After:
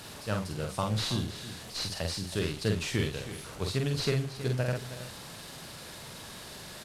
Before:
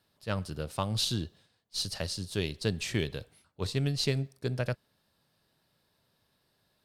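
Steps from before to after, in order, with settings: delta modulation 64 kbps, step -40 dBFS; doubler 47 ms -4 dB; echo 0.321 s -13 dB

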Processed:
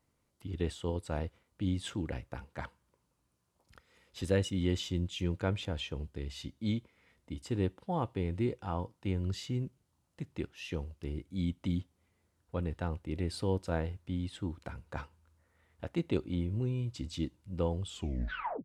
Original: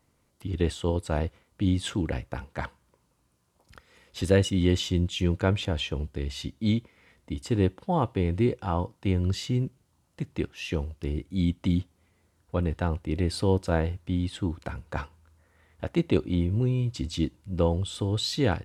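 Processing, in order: tape stop at the end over 0.77 s; gain -8 dB

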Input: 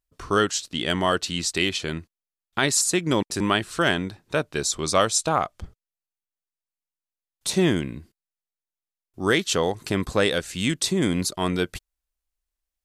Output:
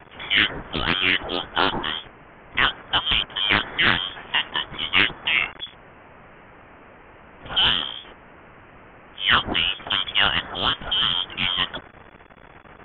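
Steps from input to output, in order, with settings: switching spikes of -16 dBFS; dynamic EQ 2000 Hz, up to +7 dB, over -39 dBFS, Q 1.6; inverted band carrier 3400 Hz; Doppler distortion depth 0.32 ms

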